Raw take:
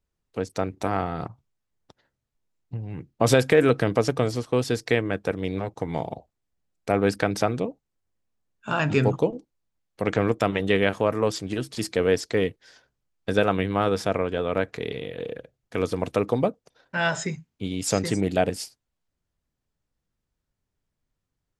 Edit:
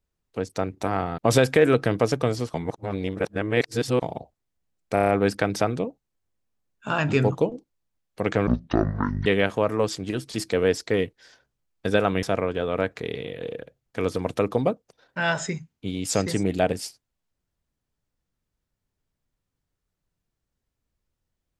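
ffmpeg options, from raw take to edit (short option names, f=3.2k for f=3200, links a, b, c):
-filter_complex "[0:a]asplit=12[a][b][c][d][e][f][g][h][i][j][k][l];[a]atrim=end=1.182[m];[b]atrim=start=3.138:end=4.502[n];[c]atrim=start=4.498:end=5.982,asetpts=PTS-STARTPTS,areverse[o];[d]atrim=start=5.978:end=6.932[p];[e]atrim=start=6.898:end=6.932[q];[f]atrim=start=6.898:end=6.932[r];[g]atrim=start=6.898:end=6.932[s];[h]atrim=start=6.898:end=6.932[t];[i]atrim=start=6.898:end=10.284[u];[j]atrim=start=10.28:end=10.69,asetpts=PTS-STARTPTS,asetrate=22932,aresample=44100,atrim=end_sample=34771,asetpts=PTS-STARTPTS[v];[k]atrim=start=10.686:end=13.662[w];[l]atrim=start=13.998[x];[m][n]acrossfade=d=0.004:c1=hsin:c2=hsin[y];[y][o]acrossfade=d=0.004:c1=hsin:c2=hsin[z];[z][p]acrossfade=d=0.004:c1=hsin:c2=hsin[aa];[aa][q]acrossfade=d=0.004:c1=hsin:c2=hsin[ab];[ab][r]acrossfade=d=0.004:c1=hsin:c2=hsin[ac];[ac][s]acrossfade=d=0.004:c1=hsin:c2=hsin[ad];[ad][t]acrossfade=d=0.004:c1=hsin:c2=hsin[ae];[ae][u]acrossfade=d=0.004:c1=hsin:c2=hsin[af];[af][v]acrossfade=d=0.004:c1=hsin:c2=hsin[ag];[ag][w]acrossfade=d=0.004:c1=hsin:c2=hsin[ah];[ah][x]acrossfade=d=0.004:c1=hsin:c2=hsin"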